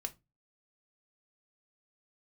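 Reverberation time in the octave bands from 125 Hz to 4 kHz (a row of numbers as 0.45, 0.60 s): 0.45, 0.30, 0.25, 0.20, 0.20, 0.15 s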